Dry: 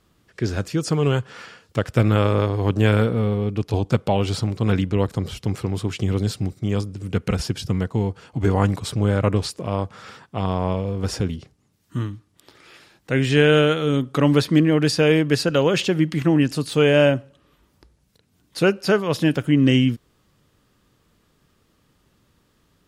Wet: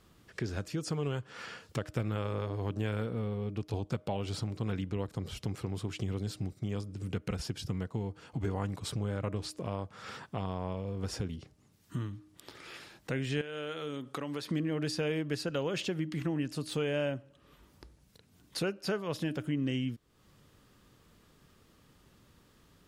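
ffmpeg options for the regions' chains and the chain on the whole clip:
-filter_complex "[0:a]asettb=1/sr,asplit=3[s0][s1][s2];[s0]atrim=end=13.414[s3];[s1]atrim=start=13.41:end=14.51,asetpts=PTS-STARTPTS,afade=t=in:d=0.004:c=qsin,afade=t=out:st=1.096:d=0.004:c=qsin,highpass=f=370:p=1,acompressor=threshold=0.0282:ratio=2:attack=3.2:release=140:knee=1:detection=peak[s4];[s2]atrim=start=14.506[s5];[s3][s4]acrossfade=d=0.004:c1=hsin:c2=qsin[s6];[s6][s5]acrossfade=d=0.004:c1=qsin:c2=hsin,bandreject=f=308.5:t=h:w=4,bandreject=f=617:t=h:w=4,acompressor=threshold=0.0126:ratio=2.5"

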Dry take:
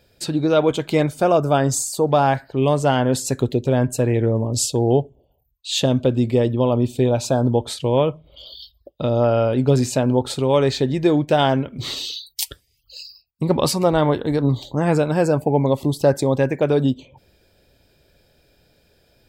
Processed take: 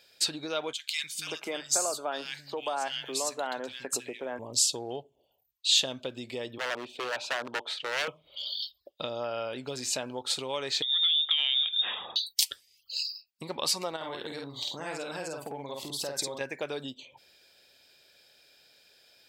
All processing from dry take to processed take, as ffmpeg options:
-filter_complex "[0:a]asettb=1/sr,asplit=3[s0][s1][s2];[s0]atrim=end=0.734[s3];[s1]atrim=start=0.73:end=4.39,asetpts=PTS-STARTPTS,afade=t=in:d=0.004:c=qsin,afade=t=out:st=3.656:d=0.004:c=qsin,equalizer=f=120:t=o:w=0.67:g=-13,acompressor=mode=upward:threshold=0.0316:ratio=2.5:attack=3.2:release=140:knee=2.83:detection=peak,acrossover=split=160|2200[s4][s5][s6];[s4]adelay=260[s7];[s5]adelay=540[s8];[s7][s8][s6]amix=inputs=3:normalize=0,atrim=end_sample=161406[s9];[s2]atrim=start=4.386[s10];[s3][s9]acrossfade=d=0.004:c1=hsin:c2=qsin[s11];[s11][s10]acrossfade=d=0.004:c1=qsin:c2=hsin,asettb=1/sr,asplit=3[s12][s13][s14];[s12]atrim=end=6.584[s15];[s13]atrim=start=6.58:end=8.08,asetpts=PTS-STARTPTS,afade=t=in:d=0.004:c=qsin,afade=t=out:st=1.496:d=0.004:c=qsin,acrossover=split=300 3300:gain=0.178 1 0.0794[s16][s17][s18];[s16][s17][s18]amix=inputs=3:normalize=0,aeval=exprs='0.119*(abs(mod(val(0)/0.119+3,4)-2)-1)':c=same[s19];[s14]atrim=start=8.076[s20];[s15][s19]acrossfade=d=0.004:c1=hsin:c2=qsin[s21];[s21][s20]acrossfade=d=0.004:c1=qsin:c2=hsin,asettb=1/sr,asplit=3[s22][s23][s24];[s22]atrim=end=10.824[s25];[s23]atrim=start=10.82:end=12.16,asetpts=PTS-STARTPTS,afade=t=in:d=0.004:c=qsin,afade=t=out:st=1.336:d=0.004:c=qsin,lowpass=f=3200:t=q:w=0.5098,lowpass=f=3200:t=q:w=0.6013,lowpass=f=3200:t=q:w=0.9,lowpass=f=3200:t=q:w=2.563,afreqshift=-3800,acompressor=threshold=0.0562:ratio=12:attack=3.2:release=140:knee=1:detection=peak[s26];[s24]atrim=start=12.156[s27];[s25][s26]acrossfade=d=0.004:c1=hsin:c2=qsin[s28];[s28][s27]acrossfade=d=0.004:c1=qsin:c2=hsin,asettb=1/sr,asplit=3[s29][s30][s31];[s29]atrim=end=13.964[s32];[s30]atrim=start=13.96:end=16.41,asetpts=PTS-STARTPTS,afade=t=in:d=0.004:c=qsin,afade=t=out:st=2.446:d=0.004:c=qsin,acompressor=threshold=0.0631:ratio=3:attack=3.2:release=140:knee=1:detection=peak,asplit=2[s33][s34];[s34]adelay=50,volume=0.708[s35];[s33][s35]amix=inputs=2:normalize=0,atrim=end_sample=108045[s36];[s31]atrim=start=16.406[s37];[s32][s36]acrossfade=d=0.004:c1=hsin:c2=qsin[s38];[s38][s37]acrossfade=d=0.004:c1=qsin:c2=hsin,acompressor=threshold=0.0562:ratio=3,highpass=f=940:p=1,equalizer=f=4200:w=0.44:g=8,volume=0.708"

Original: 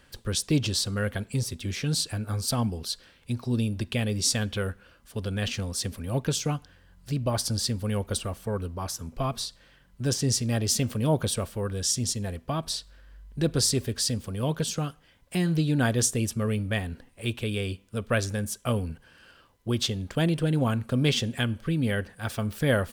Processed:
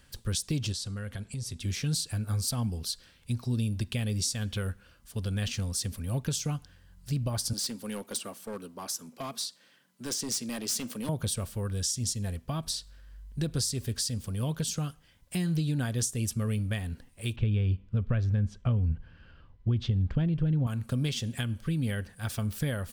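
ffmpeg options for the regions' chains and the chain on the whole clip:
-filter_complex "[0:a]asettb=1/sr,asplit=3[s0][s1][s2];[s0]atrim=end=0.724[s3];[s1]atrim=start=0.72:end=1.62,asetpts=PTS-STARTPTS,afade=t=in:d=0.004:c=qsin,afade=t=out:st=0.896:d=0.004:c=qsin,acompressor=threshold=0.0224:ratio=4:attack=3.2:release=140:knee=1:detection=peak,lowpass=10000[s4];[s2]atrim=start=1.616[s5];[s3][s4]acrossfade=d=0.004:c1=hsin:c2=qsin[s6];[s6][s5]acrossfade=d=0.004:c1=qsin:c2=hsin,asettb=1/sr,asplit=3[s7][s8][s9];[s7]atrim=end=7.534[s10];[s8]atrim=start=7.53:end=11.09,asetpts=PTS-STARTPTS,afade=t=in:d=0.004:c=qsin,afade=t=out:st=3.556:d=0.004:c=qsin,highpass=f=210:w=0.5412,highpass=f=210:w=1.3066,asoftclip=type=hard:threshold=0.0501[s11];[s9]atrim=start=11.086[s12];[s10][s11]acrossfade=d=0.004:c1=hsin:c2=qsin[s13];[s13][s12]acrossfade=d=0.004:c1=qsin:c2=hsin,asettb=1/sr,asplit=3[s14][s15][s16];[s14]atrim=end=17.364[s17];[s15]atrim=start=17.36:end=20.67,asetpts=PTS-STARTPTS,afade=t=in:d=0.004:c=qsin,afade=t=out:st=3.306:d=0.004:c=qsin,lowpass=3400,aemphasis=mode=reproduction:type=bsi[s18];[s16]atrim=start=20.666[s19];[s17][s18]acrossfade=d=0.004:c1=hsin:c2=qsin[s20];[s20][s19]acrossfade=d=0.004:c1=qsin:c2=hsin,lowshelf=f=480:g=-7,acompressor=threshold=0.0355:ratio=6,bass=f=250:g=12,treble=f=4000:g=6,volume=0.631"

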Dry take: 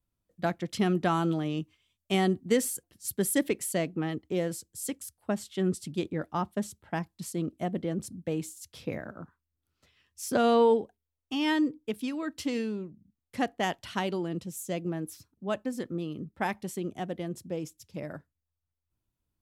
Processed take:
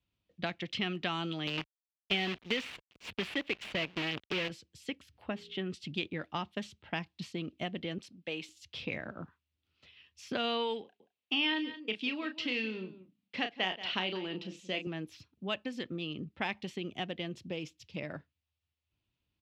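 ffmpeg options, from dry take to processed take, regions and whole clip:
-filter_complex "[0:a]asettb=1/sr,asplit=3[s0][s1][s2];[s0]atrim=end=1.474[s3];[s1]atrim=start=1.47:end=4.5,asetpts=PTS-STARTPTS,afade=t=in:d=0.004:c=qsin,afade=t=out:st=3.026:d=0.004:c=qsin,asuperstop=centerf=1200:order=8:qfactor=1.5,acrusher=bits=6:dc=4:mix=0:aa=0.000001[s4];[s2]atrim=start=4.496[s5];[s3][s4]acrossfade=d=0.004:c1=hsin:c2=qsin[s6];[s6][s5]acrossfade=d=0.004:c1=qsin:c2=hsin,asettb=1/sr,asplit=3[s7][s8][s9];[s7]atrim=end=5.004[s10];[s8]atrim=start=5:end=5.7,asetpts=PTS-STARTPTS,afade=t=in:d=0.004:c=qsin,afade=t=out:st=0.696:d=0.004:c=qsin,equalizer=f=7300:w=0.44:g=-12.5,bandreject=f=58.42:t=h:w=4,bandreject=f=116.84:t=h:w=4,bandreject=f=175.26:t=h:w=4,bandreject=f=233.68:t=h:w=4,bandreject=f=292.1:t=h:w=4,bandreject=f=350.52:t=h:w=4,bandreject=f=408.94:t=h:w=4,bandreject=f=467.36:t=h:w=4,acompressor=mode=upward:threshold=0.00562:ratio=2.5:attack=3.2:release=140:knee=2.83:detection=peak[s11];[s9]atrim=start=5.696[s12];[s10][s11]acrossfade=d=0.004:c1=hsin:c2=qsin[s13];[s13][s12]acrossfade=d=0.004:c1=qsin:c2=hsin,asettb=1/sr,asplit=3[s14][s15][s16];[s14]atrim=end=7.984[s17];[s15]atrim=start=7.98:end=8.49,asetpts=PTS-STARTPTS,afade=t=in:d=0.004:c=qsin,afade=t=out:st=0.506:d=0.004:c=qsin,highpass=f=790:p=1,bandreject=f=6900:w=12[s18];[s16]atrim=start=8.486[s19];[s17][s18]acrossfade=d=0.004:c1=hsin:c2=qsin[s20];[s20][s19]acrossfade=d=0.004:c1=qsin:c2=hsin,asettb=1/sr,asplit=3[s21][s22][s23];[s21]atrim=end=10.824[s24];[s22]atrim=start=10.82:end=14.87,asetpts=PTS-STARTPTS,afade=t=in:d=0.004:c=qsin,afade=t=out:st=4.046:d=0.004:c=qsin,highpass=200,lowpass=5200,asplit=2[s25][s26];[s26]adelay=32,volume=0.398[s27];[s25][s27]amix=inputs=2:normalize=0,atrim=end_sample=178605,aecho=1:1:178:0.133,atrim=end_sample=178605[s28];[s23]atrim=start=14.866[s29];[s24][s28]acrossfade=d=0.004:c1=hsin:c2=qsin[s30];[s30][s29]acrossfade=d=0.004:c1=qsin:c2=hsin,highpass=51,acrossover=split=1200|2700[s31][s32][s33];[s31]acompressor=threshold=0.0158:ratio=4[s34];[s32]acompressor=threshold=0.00891:ratio=4[s35];[s33]acompressor=threshold=0.00447:ratio=4[s36];[s34][s35][s36]amix=inputs=3:normalize=0,firequalizer=gain_entry='entry(1500,0);entry(2700,12);entry(9200,-19)':delay=0.05:min_phase=1"

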